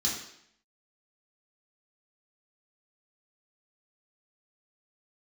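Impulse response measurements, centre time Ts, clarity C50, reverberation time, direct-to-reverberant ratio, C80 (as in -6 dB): 43 ms, 4.0 dB, 0.70 s, -5.5 dB, 7.0 dB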